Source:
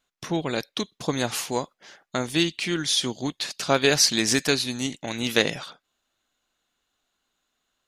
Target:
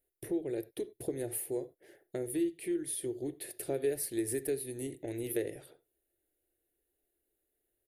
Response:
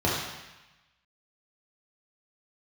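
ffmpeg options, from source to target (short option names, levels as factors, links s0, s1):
-filter_complex "[0:a]firequalizer=gain_entry='entry(100,0);entry(210,-16);entry(350,6);entry(1100,-28);entry(1800,-9);entry(3200,-19);entry(6200,-24);entry(9700,8)':delay=0.05:min_phase=1,acompressor=threshold=0.0126:ratio=2,asplit=2[s0][s1];[1:a]atrim=start_sample=2205,atrim=end_sample=4410[s2];[s1][s2]afir=irnorm=-1:irlink=0,volume=0.0531[s3];[s0][s3]amix=inputs=2:normalize=0,volume=0.794"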